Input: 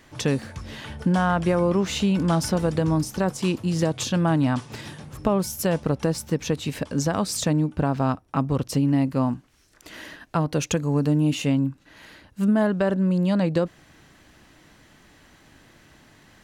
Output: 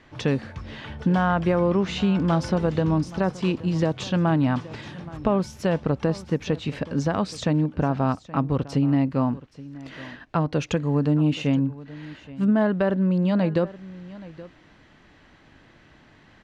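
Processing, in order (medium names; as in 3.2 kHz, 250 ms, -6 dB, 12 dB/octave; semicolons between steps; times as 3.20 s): low-pass 3.7 kHz 12 dB/octave; on a send: delay 824 ms -18.5 dB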